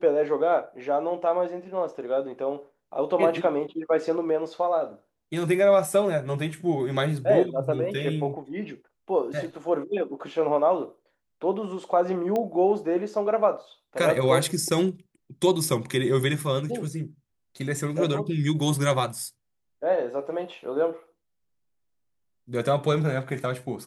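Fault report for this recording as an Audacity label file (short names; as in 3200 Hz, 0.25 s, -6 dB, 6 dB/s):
12.360000	12.360000	pop -16 dBFS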